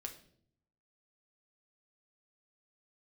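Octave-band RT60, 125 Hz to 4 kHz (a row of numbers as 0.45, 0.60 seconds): 1.0, 0.90, 0.75, 0.50, 0.50, 0.50 seconds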